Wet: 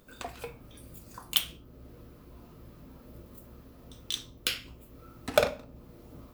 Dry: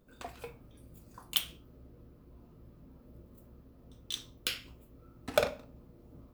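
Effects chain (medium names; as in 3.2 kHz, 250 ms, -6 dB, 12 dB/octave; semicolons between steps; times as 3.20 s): tape noise reduction on one side only encoder only; trim +4 dB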